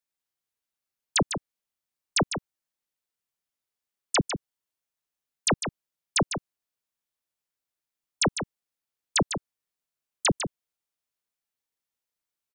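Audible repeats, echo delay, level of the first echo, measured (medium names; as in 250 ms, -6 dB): 1, 151 ms, -8.5 dB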